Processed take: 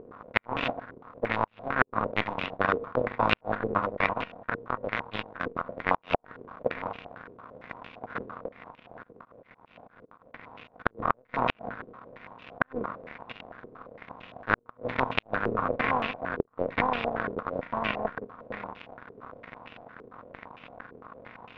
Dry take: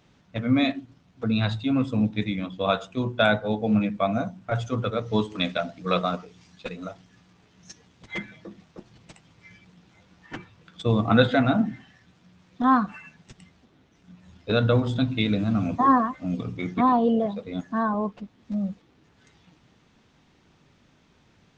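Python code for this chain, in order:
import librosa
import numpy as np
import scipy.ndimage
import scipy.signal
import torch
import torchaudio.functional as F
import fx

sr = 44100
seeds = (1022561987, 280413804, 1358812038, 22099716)

y = fx.bin_compress(x, sr, power=0.2)
y = fx.power_curve(y, sr, exponent=3.0)
y = fx.level_steps(y, sr, step_db=16, at=(4.13, 5.69))
y = fx.comb_fb(y, sr, f0_hz=470.0, decay_s=0.43, harmonics='all', damping=0.0, mix_pct=50)
y = fx.auto_swell(y, sr, attack_ms=220.0, at=(8.47, 10.85), fade=0.02)
y = fx.gate_flip(y, sr, shuts_db=-10.0, range_db=-41)
y = fx.filter_held_lowpass(y, sr, hz=8.8, low_hz=420.0, high_hz=2700.0)
y = F.gain(torch.from_numpy(y), 3.5).numpy()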